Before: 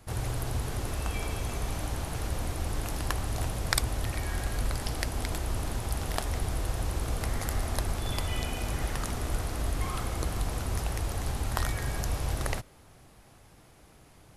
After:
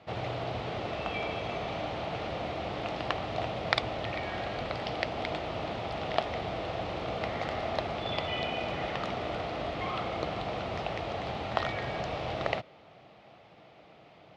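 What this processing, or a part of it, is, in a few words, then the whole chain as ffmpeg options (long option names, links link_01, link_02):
kitchen radio: -af "highpass=210,equalizer=frequency=260:width_type=q:width=4:gain=-7,equalizer=frequency=380:width_type=q:width=4:gain=-4,equalizer=frequency=660:width_type=q:width=4:gain=5,equalizer=frequency=1000:width_type=q:width=4:gain=-5,equalizer=frequency=1600:width_type=q:width=4:gain=-8,lowpass=frequency=3600:width=0.5412,lowpass=frequency=3600:width=1.3066,volume=5.5dB"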